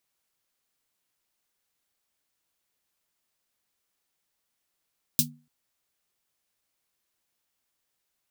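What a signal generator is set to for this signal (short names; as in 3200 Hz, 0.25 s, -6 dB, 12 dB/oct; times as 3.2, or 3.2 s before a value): snare drum length 0.29 s, tones 150 Hz, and 240 Hz, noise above 3600 Hz, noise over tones 12 dB, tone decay 0.36 s, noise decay 0.11 s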